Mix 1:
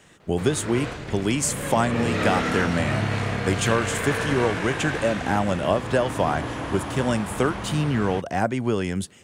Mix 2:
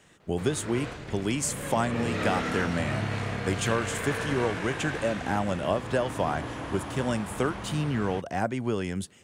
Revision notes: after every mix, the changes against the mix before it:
speech -5.0 dB; background -5.5 dB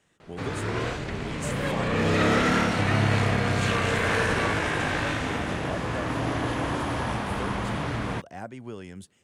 speech -10.0 dB; background +8.0 dB

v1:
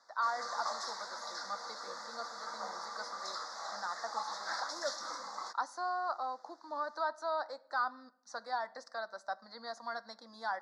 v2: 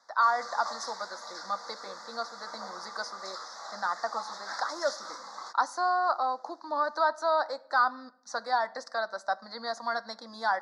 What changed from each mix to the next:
speech +9.0 dB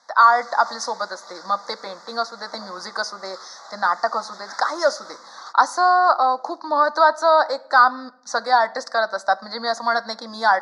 speech +11.0 dB

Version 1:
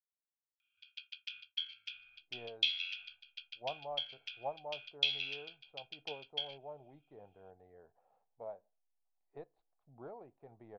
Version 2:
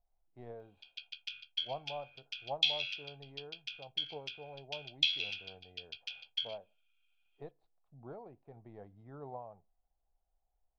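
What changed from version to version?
speech: entry -1.95 s; master: add tone controls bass +7 dB, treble +7 dB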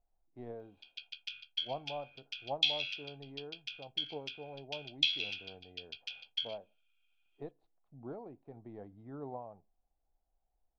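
speech: add bell 280 Hz +8 dB 0.95 oct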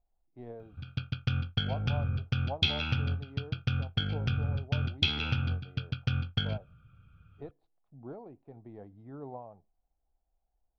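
background: remove inverse Chebyshev high-pass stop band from 990 Hz, stop band 50 dB; master: add bell 65 Hz +5 dB 2.1 oct

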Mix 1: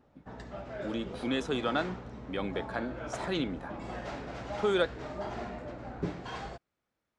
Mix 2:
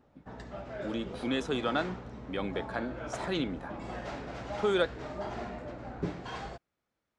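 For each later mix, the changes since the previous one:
none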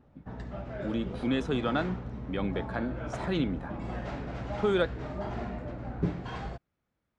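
master: add tone controls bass +8 dB, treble -6 dB

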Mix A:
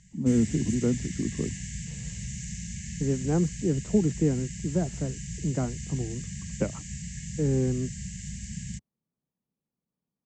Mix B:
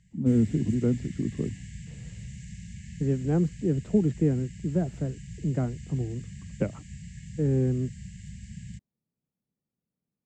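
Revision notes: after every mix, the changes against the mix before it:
background -5.5 dB; master: add fifteen-band EQ 100 Hz +5 dB, 1000 Hz -5 dB, 6300 Hz -11 dB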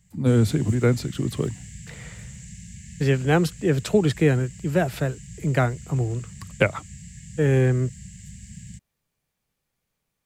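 speech: remove band-pass 220 Hz, Q 1.6; background: remove air absorption 98 m

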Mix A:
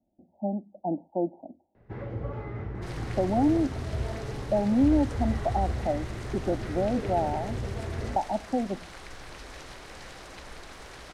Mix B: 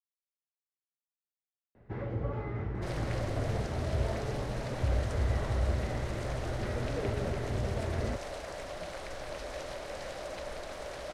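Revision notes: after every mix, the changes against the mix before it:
speech: muted; second sound: add bell 590 Hz +15 dB 0.44 oct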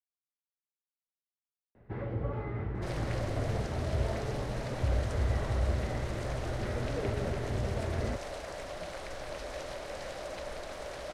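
first sound: add LPF 4600 Hz

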